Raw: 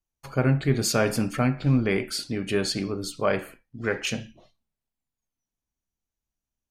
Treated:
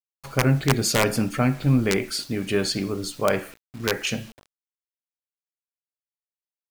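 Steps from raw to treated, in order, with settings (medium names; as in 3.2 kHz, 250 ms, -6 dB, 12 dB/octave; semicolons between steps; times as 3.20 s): word length cut 8-bit, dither none; integer overflow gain 12 dB; trim +2 dB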